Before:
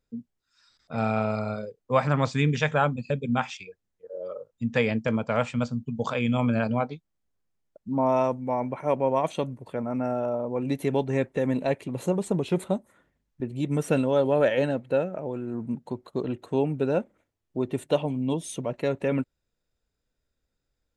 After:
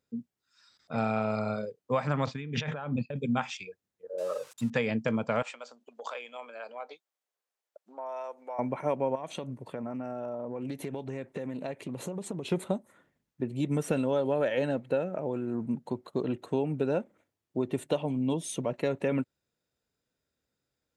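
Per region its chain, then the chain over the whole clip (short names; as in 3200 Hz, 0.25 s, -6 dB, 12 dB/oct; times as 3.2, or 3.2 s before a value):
2.26–3.16 expander -34 dBFS + LPF 3600 Hz + negative-ratio compressor -33 dBFS
4.18–4.7 switching spikes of -35.5 dBFS + LPF 9200 Hz + bell 1000 Hz +8.5 dB 1.2 oct
5.42–8.59 compressor 10:1, threshold -31 dBFS + HPF 480 Hz 24 dB/oct
9.15–12.45 compressor 12:1, threshold -31 dBFS + Doppler distortion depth 0.13 ms
whole clip: HPF 110 Hz; compressor, threshold -24 dBFS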